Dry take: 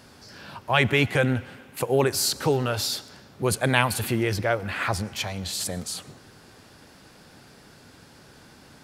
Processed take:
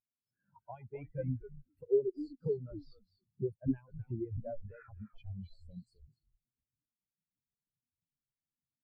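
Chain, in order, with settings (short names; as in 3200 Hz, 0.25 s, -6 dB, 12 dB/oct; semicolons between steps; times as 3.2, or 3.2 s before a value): compressor 5:1, threshold -36 dBFS, peak gain reduction 19 dB; frequency-shifting echo 0.254 s, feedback 42%, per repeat -110 Hz, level -3.5 dB; spectral expander 4:1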